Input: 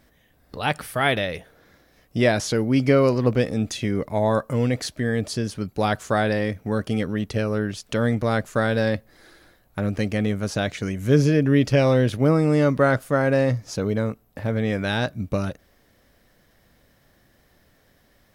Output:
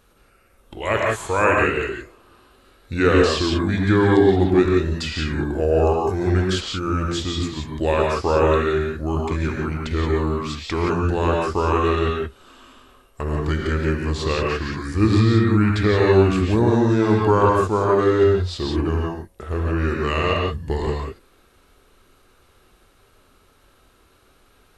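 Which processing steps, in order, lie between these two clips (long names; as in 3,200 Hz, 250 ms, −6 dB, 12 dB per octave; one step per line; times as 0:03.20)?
parametric band 220 Hz −10 dB 0.89 octaves
convolution reverb, pre-delay 3 ms, DRR −1.5 dB
wrong playback speed 45 rpm record played at 33 rpm
level +1.5 dB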